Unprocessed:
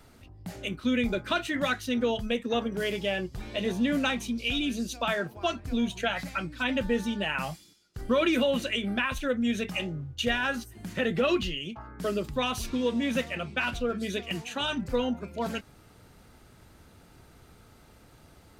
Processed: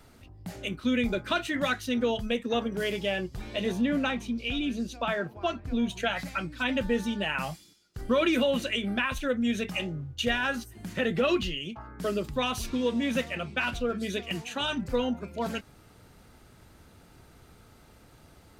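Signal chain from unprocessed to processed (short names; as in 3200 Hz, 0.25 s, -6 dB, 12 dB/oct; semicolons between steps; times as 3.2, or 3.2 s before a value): 3.81–5.89 high shelf 4300 Hz -11.5 dB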